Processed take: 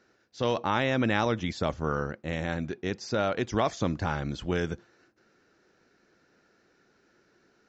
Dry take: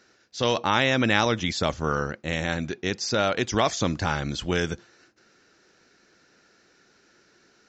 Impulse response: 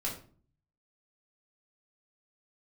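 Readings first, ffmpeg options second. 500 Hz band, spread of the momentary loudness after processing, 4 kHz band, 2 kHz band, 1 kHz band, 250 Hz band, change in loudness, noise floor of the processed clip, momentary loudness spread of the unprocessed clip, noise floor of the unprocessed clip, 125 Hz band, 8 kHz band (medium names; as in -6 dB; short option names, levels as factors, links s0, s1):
-3.0 dB, 7 LU, -10.0 dB, -6.5 dB, -4.0 dB, -2.5 dB, -4.5 dB, -67 dBFS, 8 LU, -62 dBFS, -2.5 dB, -12.0 dB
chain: -af "highshelf=f=2300:g=-10.5,volume=0.75"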